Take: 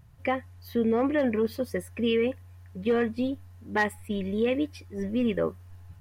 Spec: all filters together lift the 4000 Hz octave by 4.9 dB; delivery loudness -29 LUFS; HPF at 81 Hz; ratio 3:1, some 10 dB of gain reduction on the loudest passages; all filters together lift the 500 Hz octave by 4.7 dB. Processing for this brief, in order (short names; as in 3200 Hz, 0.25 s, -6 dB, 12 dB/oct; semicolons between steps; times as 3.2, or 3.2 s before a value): HPF 81 Hz; bell 500 Hz +5 dB; bell 4000 Hz +7 dB; compressor 3:1, threshold -31 dBFS; gain +4.5 dB